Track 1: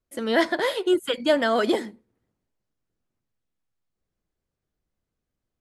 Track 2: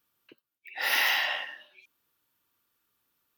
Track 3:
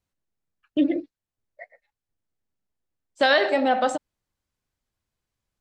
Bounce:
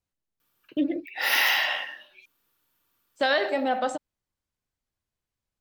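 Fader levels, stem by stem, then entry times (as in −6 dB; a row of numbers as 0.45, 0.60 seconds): muted, +3.0 dB, −4.5 dB; muted, 0.40 s, 0.00 s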